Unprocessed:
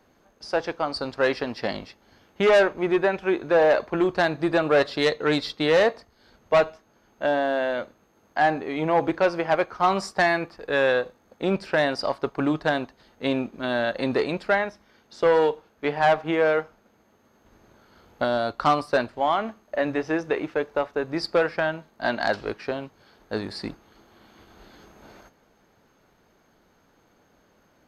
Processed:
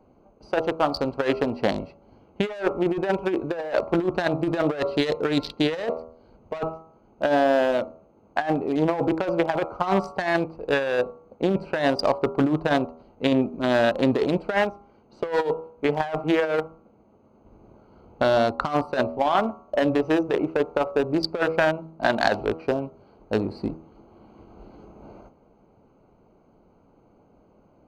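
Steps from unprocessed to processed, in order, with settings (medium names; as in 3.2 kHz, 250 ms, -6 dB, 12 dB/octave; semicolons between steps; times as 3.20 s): local Wiener filter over 25 samples; de-hum 80.76 Hz, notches 17; compressor with a negative ratio -24 dBFS, ratio -0.5; trim +3.5 dB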